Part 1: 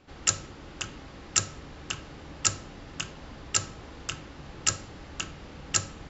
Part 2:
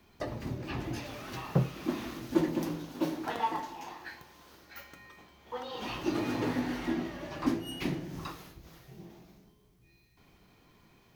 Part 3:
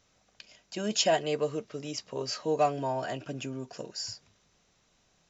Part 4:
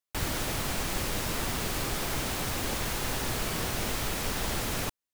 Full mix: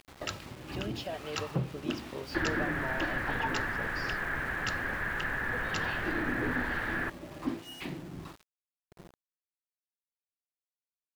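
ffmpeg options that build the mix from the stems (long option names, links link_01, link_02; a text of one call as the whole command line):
ffmpeg -i stem1.wav -i stem2.wav -i stem3.wav -i stem4.wav -filter_complex "[0:a]highpass=frequency=49:width=0.5412,highpass=frequency=49:width=1.3066,acompressor=mode=upward:threshold=-39dB:ratio=2.5,volume=-6dB[link_01];[1:a]acrossover=split=630[link_02][link_03];[link_02]aeval=exprs='val(0)*(1-0.7/2+0.7/2*cos(2*PI*1.1*n/s))':channel_layout=same[link_04];[link_03]aeval=exprs='val(0)*(1-0.7/2-0.7/2*cos(2*PI*1.1*n/s))':channel_layout=same[link_05];[link_04][link_05]amix=inputs=2:normalize=0,volume=-1dB[link_06];[2:a]acompressor=threshold=-32dB:ratio=6,volume=-3.5dB[link_07];[3:a]lowpass=frequency=1700:width_type=q:width=8.7,adelay=2200,volume=-6.5dB[link_08];[link_01][link_06][link_07][link_08]amix=inputs=4:normalize=0,lowpass=frequency=4400:width=0.5412,lowpass=frequency=4400:width=1.3066,aeval=exprs='val(0)*gte(abs(val(0)),0.00473)':channel_layout=same" out.wav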